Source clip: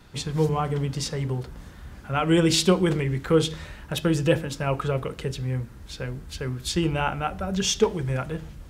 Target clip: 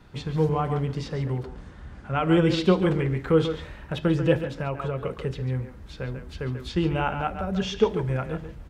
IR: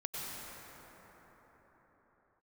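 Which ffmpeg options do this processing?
-filter_complex "[0:a]asettb=1/sr,asplit=3[link_01][link_02][link_03];[link_01]atrim=end=1.464[link_04];[link_02]atrim=start=1.46:end=2.16,asetpts=PTS-STARTPTS,afade=type=in:duration=0.004:curve=qsin,afade=type=out:start_time=0.696:duration=0.004:curve=qsin,lowpass=frequency=9800:width=0.5412,lowpass=frequency=9800:width=1.3066[link_05];[link_03]atrim=start=2.156[link_06];[link_04][link_05]acrossfade=duration=0.004:curve1=hsin:curve2=qsin[link_07];[link_07][link_06]acrossfade=duration=0.004:curve1=qsin:curve2=hsin,asplit=2[link_08][link_09];[link_09]adelay=140,highpass=300,lowpass=3400,asoftclip=type=hard:threshold=-15dB,volume=-8dB[link_10];[link_08][link_10]amix=inputs=2:normalize=0,acrossover=split=4800[link_11][link_12];[link_12]acompressor=threshold=-46dB:ratio=4:attack=1:release=60[link_13];[link_11][link_13]amix=inputs=2:normalize=0,highshelf=frequency=3800:gain=-11,asettb=1/sr,asplit=3[link_14][link_15][link_16];[link_14]atrim=end=4.364[link_17];[link_15]atrim=start=4.36:end=5.04,asetpts=PTS-STARTPTS,afade=type=in:duration=0.004:curve=qsin,afade=type=out:start_time=0.676:duration=0.004:curve=qsin,acompressor=threshold=-25dB:ratio=6[link_18];[link_16]atrim=start=5.036[link_19];[link_17][link_18]acrossfade=duration=0.004:curve1=hsin:curve2=qsin[link_20];[link_20][link_19]acrossfade=duration=0.004:curve1=qsin:curve2=hsin"

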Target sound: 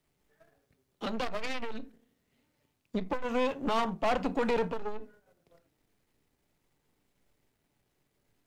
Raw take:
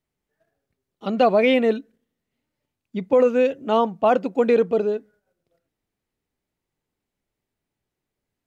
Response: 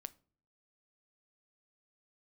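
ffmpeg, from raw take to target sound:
-filter_complex "[0:a]aeval=exprs='if(lt(val(0),0),0.447*val(0),val(0))':channel_layout=same,asplit=3[link_01][link_02][link_03];[link_01]afade=type=out:start_time=3.23:duration=0.02[link_04];[link_02]highpass=52,afade=type=in:start_time=3.23:duration=0.02,afade=type=out:start_time=4.68:duration=0.02[link_05];[link_03]afade=type=in:start_time=4.68:duration=0.02[link_06];[link_04][link_05][link_06]amix=inputs=3:normalize=0[link_07];[1:a]atrim=start_sample=2205,atrim=end_sample=3969[link_08];[link_07][link_08]afir=irnorm=-1:irlink=0,acrossover=split=220|710[link_09][link_10][link_11];[link_10]acompressor=threshold=-37dB:ratio=6[link_12];[link_09][link_12][link_11]amix=inputs=3:normalize=0,aeval=exprs='0.188*sin(PI/2*1.78*val(0)/0.188)':channel_layout=same,alimiter=level_in=1.5dB:limit=-24dB:level=0:latency=1:release=392,volume=-1.5dB,aeval=exprs='(tanh(39.8*val(0)+0.65)-tanh(0.65))/39.8':channel_layout=same,volume=9dB"

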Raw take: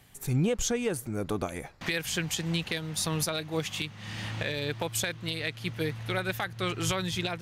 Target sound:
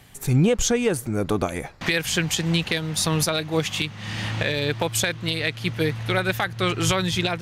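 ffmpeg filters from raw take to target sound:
ffmpeg -i in.wav -af "highshelf=frequency=11000:gain=-5,volume=8dB" out.wav

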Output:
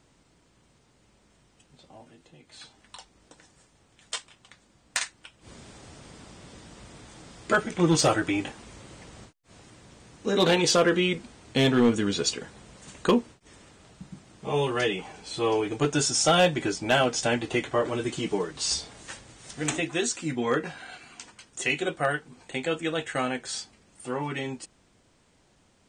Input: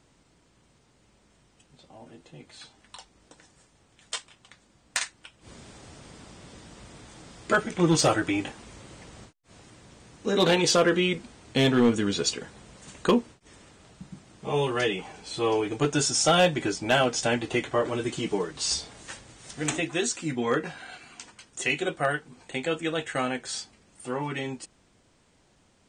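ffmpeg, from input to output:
ffmpeg -i in.wav -filter_complex "[0:a]asettb=1/sr,asplit=3[link_01][link_02][link_03];[link_01]atrim=end=2.014[link_04];[link_02]atrim=start=2.01:end=2.52,asetpts=PTS-STARTPTS,afade=type=in:duration=0.004:curve=qsin,afade=type=out:start_time=0.506:duration=0.004:curve=qsin,acrossover=split=260|1200[link_05][link_06][link_07];[link_05]acompressor=threshold=-56dB:ratio=4[link_08];[link_06]acompressor=threshold=-57dB:ratio=4[link_09];[link_07]acompressor=threshold=-59dB:ratio=4[link_10];[link_08][link_09][link_10]amix=inputs=3:normalize=0[link_11];[link_03]atrim=start=2.516[link_12];[link_04][link_11]acrossfade=duration=0.004:curve1=hsin:curve2=qsin[link_13];[link_13][link_12]acrossfade=duration=0.004:curve1=qsin:curve2=hsin" out.wav

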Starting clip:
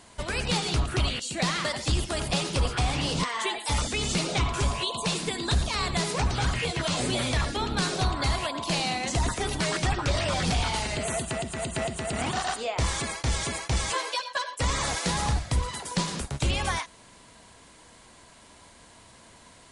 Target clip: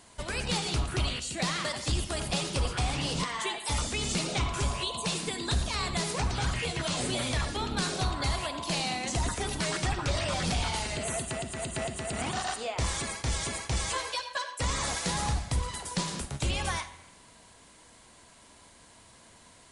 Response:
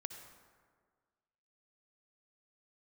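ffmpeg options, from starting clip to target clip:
-filter_complex "[0:a]asplit=2[link_01][link_02];[1:a]atrim=start_sample=2205,asetrate=74970,aresample=44100,highshelf=frequency=5900:gain=8.5[link_03];[link_02][link_03]afir=irnorm=-1:irlink=0,volume=5dB[link_04];[link_01][link_04]amix=inputs=2:normalize=0,volume=-8.5dB"

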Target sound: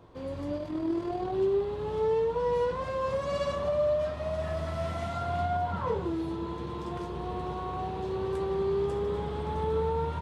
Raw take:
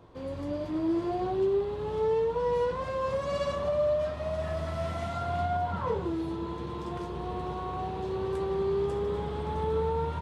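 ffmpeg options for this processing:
ffmpeg -i in.wav -filter_complex "[0:a]asettb=1/sr,asplit=3[link_01][link_02][link_03];[link_01]atrim=end=0.584[link_04];[link_02]atrim=start=0.58:end=1.34,asetpts=PTS-STARTPTS,afade=type=in:duration=0.004:curve=qsin,afade=type=out:start_time=0.756:duration=0.004:curve=qsin,tremolo=f=40:d=0.462[link_05];[link_03]atrim=start=1.336[link_06];[link_04][link_05]acrossfade=duration=0.004:curve1=hsin:curve2=qsin[link_07];[link_07][link_06]acrossfade=duration=0.004:curve1=qsin:curve2=hsin" out.wav

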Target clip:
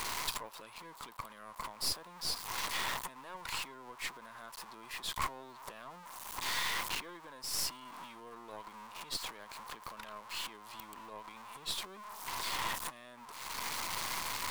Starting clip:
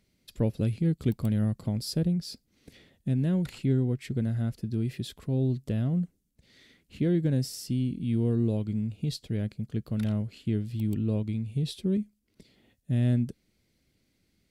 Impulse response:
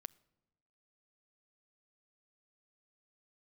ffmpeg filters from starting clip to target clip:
-af "aeval=exprs='val(0)+0.5*0.00891*sgn(val(0))':channel_layout=same,acompressor=threshold=-46dB:ratio=2,alimiter=level_in=11dB:limit=-24dB:level=0:latency=1:release=179,volume=-11dB,highpass=frequency=1000:width_type=q:width=7.1,aeval=exprs='0.0237*(cos(1*acos(clip(val(0)/0.0237,-1,1)))-cos(1*PI/2))+0.00596*(cos(4*acos(clip(val(0)/0.0237,-1,1)))-cos(4*PI/2))':channel_layout=same,volume=9.5dB"

